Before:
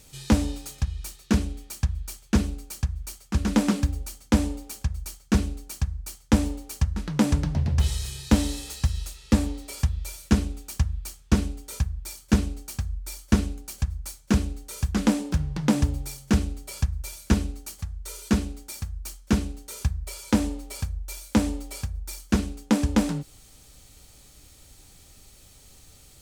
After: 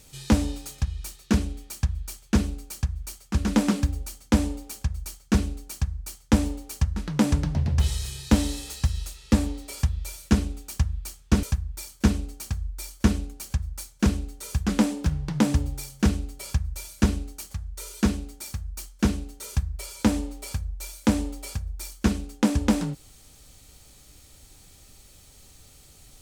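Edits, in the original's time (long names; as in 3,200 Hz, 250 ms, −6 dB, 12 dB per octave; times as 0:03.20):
0:11.43–0:11.71: remove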